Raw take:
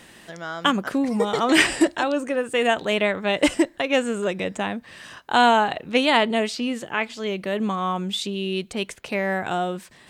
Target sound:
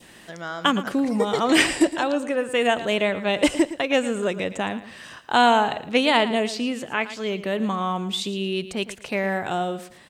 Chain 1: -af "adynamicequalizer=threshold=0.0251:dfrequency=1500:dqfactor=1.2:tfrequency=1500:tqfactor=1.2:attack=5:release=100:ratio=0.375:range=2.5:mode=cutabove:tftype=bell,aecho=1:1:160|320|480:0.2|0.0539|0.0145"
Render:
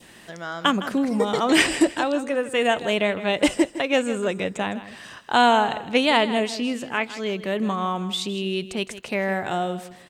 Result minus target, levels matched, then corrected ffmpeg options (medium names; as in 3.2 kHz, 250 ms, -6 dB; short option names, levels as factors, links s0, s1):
echo 47 ms late
-af "adynamicequalizer=threshold=0.0251:dfrequency=1500:dqfactor=1.2:tfrequency=1500:tqfactor=1.2:attack=5:release=100:ratio=0.375:range=2.5:mode=cutabove:tftype=bell,aecho=1:1:113|226|339:0.2|0.0539|0.0145"